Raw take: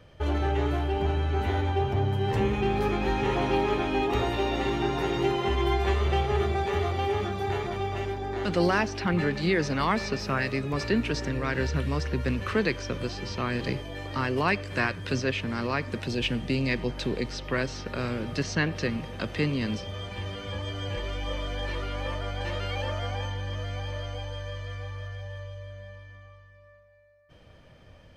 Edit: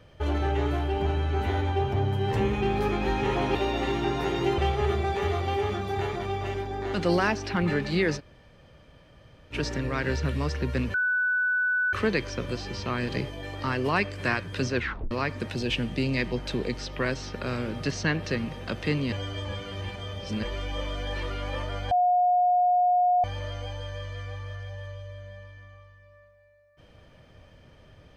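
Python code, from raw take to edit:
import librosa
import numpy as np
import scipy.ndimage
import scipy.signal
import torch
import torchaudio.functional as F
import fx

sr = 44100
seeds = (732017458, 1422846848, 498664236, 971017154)

y = fx.edit(x, sr, fx.cut(start_s=3.55, length_s=0.78),
    fx.cut(start_s=5.36, length_s=0.73),
    fx.room_tone_fill(start_s=9.69, length_s=1.35, crossfade_s=0.06),
    fx.insert_tone(at_s=12.45, length_s=0.99, hz=1490.0, db=-22.0),
    fx.tape_stop(start_s=15.27, length_s=0.36),
    fx.reverse_span(start_s=19.64, length_s=1.31),
    fx.bleep(start_s=22.43, length_s=1.33, hz=719.0, db=-18.5), tone=tone)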